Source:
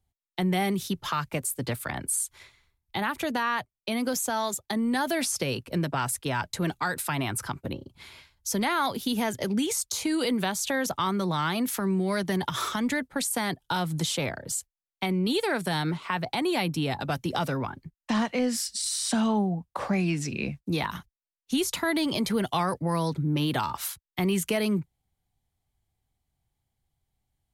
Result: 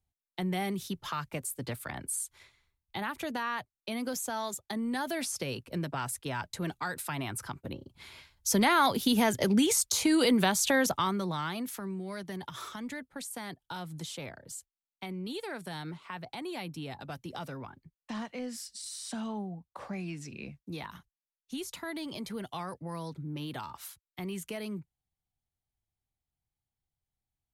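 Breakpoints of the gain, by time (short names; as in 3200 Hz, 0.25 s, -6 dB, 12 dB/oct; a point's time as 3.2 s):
7.65 s -6.5 dB
8.54 s +2 dB
10.8 s +2 dB
11.21 s -5 dB
12.01 s -12 dB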